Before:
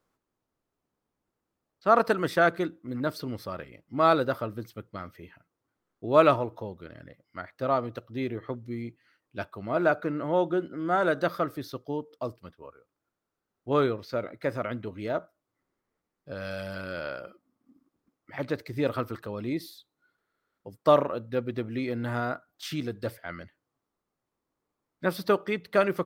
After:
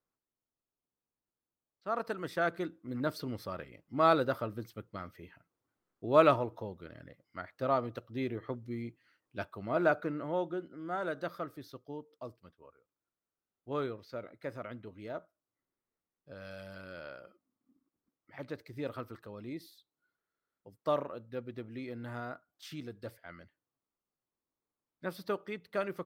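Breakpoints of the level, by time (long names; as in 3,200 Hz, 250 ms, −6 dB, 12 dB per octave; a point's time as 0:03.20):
0:01.92 −14 dB
0:02.98 −4 dB
0:09.93 −4 dB
0:10.64 −11 dB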